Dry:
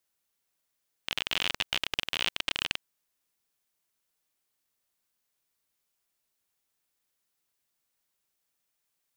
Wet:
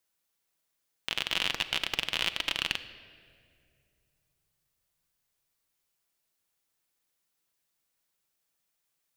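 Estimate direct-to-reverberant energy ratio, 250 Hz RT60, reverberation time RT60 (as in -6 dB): 9.5 dB, 2.8 s, 2.3 s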